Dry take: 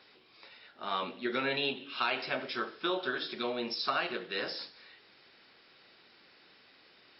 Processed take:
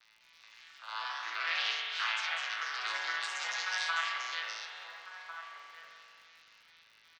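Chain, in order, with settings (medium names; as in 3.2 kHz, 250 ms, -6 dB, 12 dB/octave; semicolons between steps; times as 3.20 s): vocoder on a broken chord bare fifth, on A2, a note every 201 ms; Bessel high-pass 1.8 kHz, order 4; ever faster or slower copies 200 ms, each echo +2 st, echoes 3; crackle 120 per s -61 dBFS; echo from a far wall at 240 m, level -7 dB; spring tank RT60 2.4 s, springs 43 ms, chirp 70 ms, DRR -1 dB; trim +6 dB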